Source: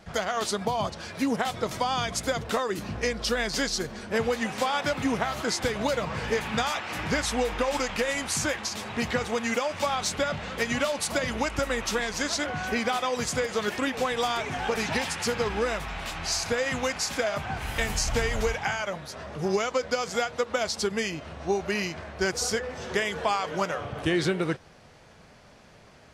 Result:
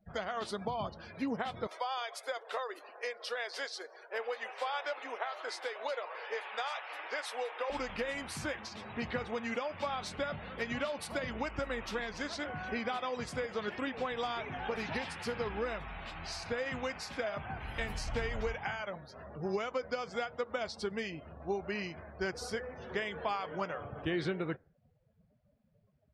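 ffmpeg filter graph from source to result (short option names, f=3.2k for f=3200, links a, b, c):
-filter_complex "[0:a]asettb=1/sr,asplit=3[a][b][c];[a]atrim=end=1.674[d];[b]atrim=start=1.67:end=7.7,asetpts=PTS-STARTPTS,afade=t=in:d=0.004:c=qsin,afade=t=out:st=6.026:d=0.004:c=qsin,highpass=f=460:w=0.5412,highpass=f=460:w=1.3066,equalizer=f=10k:w=2.1:g=2,aecho=1:1:180:0.0631,atrim=end_sample=265923[e];[c]atrim=start=7.696[f];[d][e]acrossfade=d=0.004:c1=hsin:c2=qsin[g];[g][f]acrossfade=d=0.004:c1=qsin:c2=hsin,afftdn=nr=26:nf=-43,equalizer=f=6.9k:w=1.7:g=-12.5,volume=-8.5dB"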